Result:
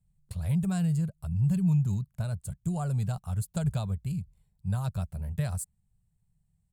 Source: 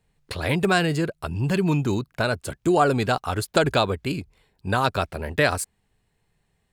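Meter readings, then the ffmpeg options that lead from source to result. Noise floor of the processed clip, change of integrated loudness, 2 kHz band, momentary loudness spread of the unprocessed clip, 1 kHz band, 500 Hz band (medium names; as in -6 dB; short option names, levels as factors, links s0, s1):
-74 dBFS, -7.0 dB, -24.0 dB, 10 LU, -20.0 dB, -21.0 dB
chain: -af "firequalizer=gain_entry='entry(180,0);entry(280,-29);entry(630,-18);entry(1700,-25);entry(5300,-18);entry(7600,-7)':delay=0.05:min_phase=1"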